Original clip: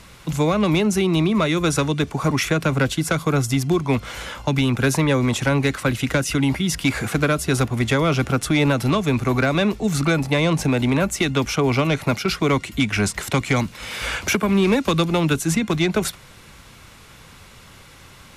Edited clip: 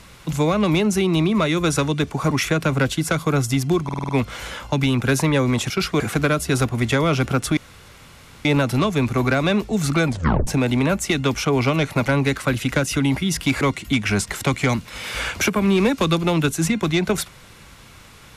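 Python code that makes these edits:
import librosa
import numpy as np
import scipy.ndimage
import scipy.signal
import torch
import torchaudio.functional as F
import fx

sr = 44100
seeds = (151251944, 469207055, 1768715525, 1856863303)

y = fx.edit(x, sr, fx.stutter(start_s=3.84, slice_s=0.05, count=6),
    fx.swap(start_s=5.45, length_s=1.54, other_s=12.18, other_length_s=0.3),
    fx.insert_room_tone(at_s=8.56, length_s=0.88),
    fx.tape_stop(start_s=10.18, length_s=0.4), tone=tone)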